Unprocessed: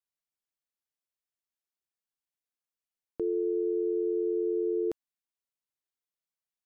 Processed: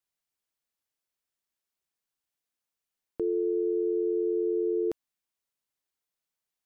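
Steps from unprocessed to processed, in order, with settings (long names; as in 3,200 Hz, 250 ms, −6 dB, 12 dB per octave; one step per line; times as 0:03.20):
brickwall limiter −26 dBFS, peak gain reduction 3 dB
level +4.5 dB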